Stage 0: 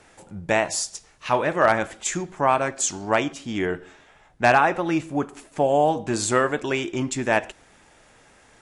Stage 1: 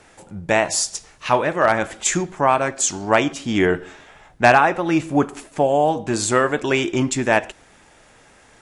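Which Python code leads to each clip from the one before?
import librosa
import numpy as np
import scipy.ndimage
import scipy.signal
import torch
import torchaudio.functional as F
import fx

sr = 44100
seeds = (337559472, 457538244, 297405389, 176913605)

y = fx.rider(x, sr, range_db=5, speed_s=0.5)
y = F.gain(torch.from_numpy(y), 3.5).numpy()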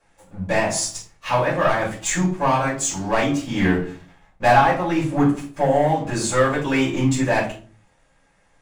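y = fx.leveller(x, sr, passes=2)
y = fx.room_shoebox(y, sr, seeds[0], volume_m3=210.0, walls='furnished', distance_m=5.4)
y = F.gain(torch.from_numpy(y), -18.0).numpy()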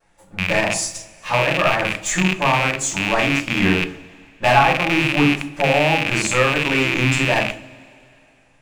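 y = fx.rattle_buzz(x, sr, strikes_db=-30.0, level_db=-8.0)
y = fx.vibrato(y, sr, rate_hz=1.4, depth_cents=38.0)
y = fx.rev_double_slope(y, sr, seeds[1], early_s=0.33, late_s=2.9, knee_db=-18, drr_db=11.0)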